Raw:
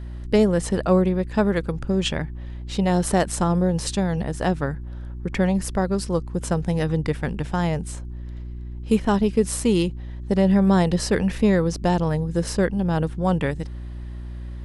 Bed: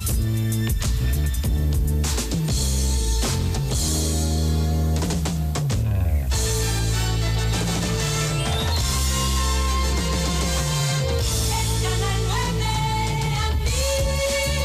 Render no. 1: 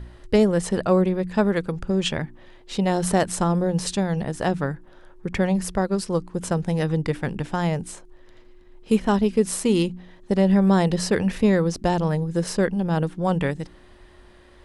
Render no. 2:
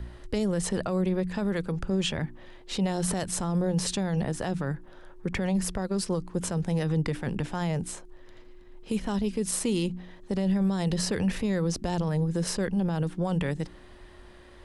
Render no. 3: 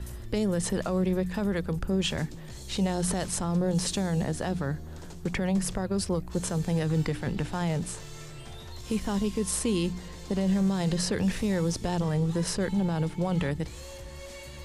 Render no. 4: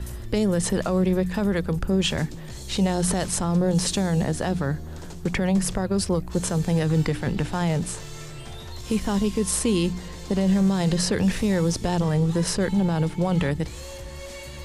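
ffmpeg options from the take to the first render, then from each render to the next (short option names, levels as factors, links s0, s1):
-af "bandreject=f=60:t=h:w=4,bandreject=f=120:t=h:w=4,bandreject=f=180:t=h:w=4,bandreject=f=240:t=h:w=4,bandreject=f=300:t=h:w=4"
-filter_complex "[0:a]acrossover=split=160|3000[s0][s1][s2];[s1]acompressor=threshold=0.0708:ratio=6[s3];[s0][s3][s2]amix=inputs=3:normalize=0,alimiter=limit=0.112:level=0:latency=1:release=14"
-filter_complex "[1:a]volume=0.0841[s0];[0:a][s0]amix=inputs=2:normalize=0"
-af "volume=1.78"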